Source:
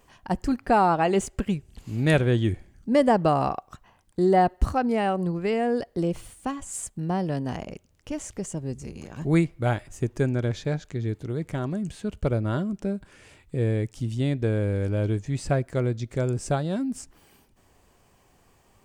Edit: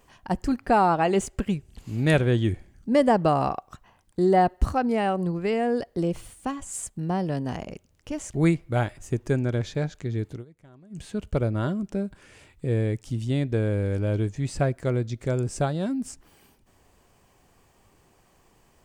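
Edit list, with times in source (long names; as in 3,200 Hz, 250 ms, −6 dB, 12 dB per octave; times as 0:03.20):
0:08.34–0:09.24: remove
0:11.23–0:11.92: duck −22.5 dB, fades 0.12 s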